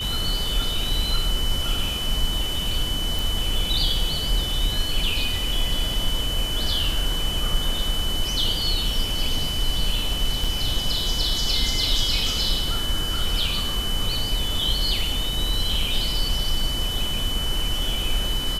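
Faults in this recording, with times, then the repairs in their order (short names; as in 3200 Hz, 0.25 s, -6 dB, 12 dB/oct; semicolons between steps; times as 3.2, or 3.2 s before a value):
tone 3000 Hz -27 dBFS
3.19 pop
10.44 gap 4.3 ms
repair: de-click; notch 3000 Hz, Q 30; interpolate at 10.44, 4.3 ms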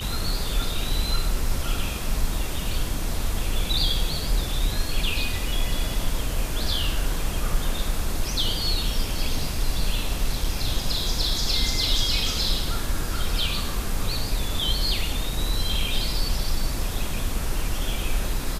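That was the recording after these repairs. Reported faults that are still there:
none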